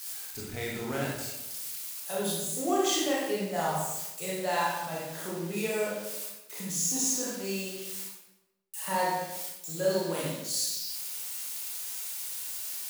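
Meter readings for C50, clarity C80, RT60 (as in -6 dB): -0.5 dB, 3.0 dB, 0.95 s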